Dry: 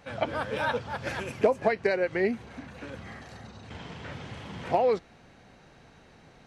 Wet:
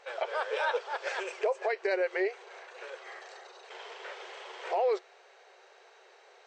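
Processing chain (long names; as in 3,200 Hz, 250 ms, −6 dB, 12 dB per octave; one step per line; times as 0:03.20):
brick-wall band-pass 360–8,500 Hz
brickwall limiter −20.5 dBFS, peak gain reduction 9 dB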